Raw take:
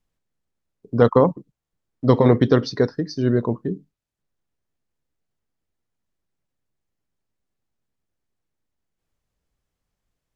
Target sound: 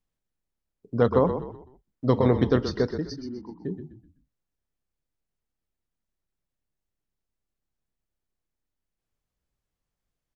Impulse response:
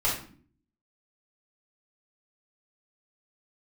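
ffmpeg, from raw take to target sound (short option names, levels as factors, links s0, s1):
-filter_complex "[0:a]asettb=1/sr,asplit=3[s0][s1][s2];[s0]atrim=end=3.164[s3];[s1]atrim=start=3.16:end=3.63,asetpts=PTS-STARTPTS,afade=t=in:d=0.004:c=qsin,afade=t=out:st=0.466:d=0.004:c=qsin,asplit=3[s4][s5][s6];[s4]bandpass=f=300:t=q:w=8,volume=1[s7];[s5]bandpass=f=870:t=q:w=8,volume=0.501[s8];[s6]bandpass=f=2240:t=q:w=8,volume=0.355[s9];[s7][s8][s9]amix=inputs=3:normalize=0[s10];[s2]atrim=start=3.626[s11];[s3][s10]acrossfade=d=0.004:c1=hsin:c2=qsin[s12];[s12][s11]acrossfade=d=0.004:c1=qsin:c2=hsin,asplit=5[s13][s14][s15][s16][s17];[s14]adelay=126,afreqshift=-34,volume=0.355[s18];[s15]adelay=252,afreqshift=-68,volume=0.127[s19];[s16]adelay=378,afreqshift=-102,volume=0.0462[s20];[s17]adelay=504,afreqshift=-136,volume=0.0166[s21];[s13][s18][s19][s20][s21]amix=inputs=5:normalize=0,volume=0.501"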